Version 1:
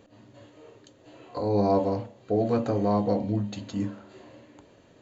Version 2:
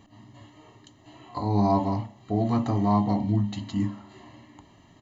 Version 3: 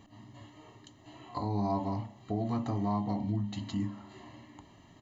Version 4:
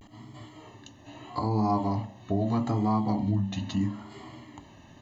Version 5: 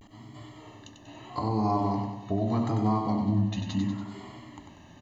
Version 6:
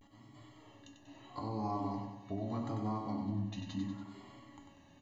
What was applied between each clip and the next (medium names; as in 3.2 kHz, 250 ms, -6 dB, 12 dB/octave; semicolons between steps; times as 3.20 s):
comb 1 ms, depth 88%
compression 2:1, threshold -31 dBFS, peak gain reduction 8 dB; trim -2 dB
vibrato 0.77 Hz 89 cents; trim +5.5 dB
feedback delay 95 ms, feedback 52%, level -6 dB; trim -1 dB
feedback comb 280 Hz, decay 0.31 s, harmonics all, mix 80%; trim +1 dB